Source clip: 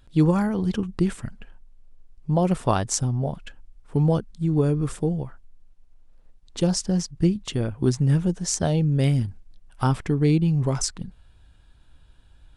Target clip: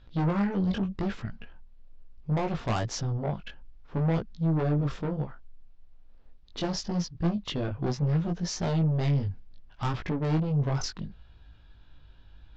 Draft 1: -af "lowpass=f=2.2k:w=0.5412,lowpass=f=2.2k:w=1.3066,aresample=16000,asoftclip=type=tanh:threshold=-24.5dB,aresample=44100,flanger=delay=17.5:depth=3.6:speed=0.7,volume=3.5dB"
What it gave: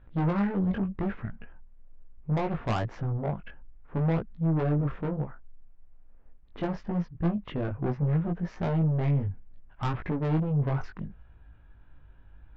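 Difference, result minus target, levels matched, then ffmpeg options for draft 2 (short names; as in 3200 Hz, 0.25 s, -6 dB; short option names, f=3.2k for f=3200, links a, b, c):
4000 Hz band -11.0 dB
-af "lowpass=f=5k:w=0.5412,lowpass=f=5k:w=1.3066,aresample=16000,asoftclip=type=tanh:threshold=-24.5dB,aresample=44100,flanger=delay=17.5:depth=3.6:speed=0.7,volume=3.5dB"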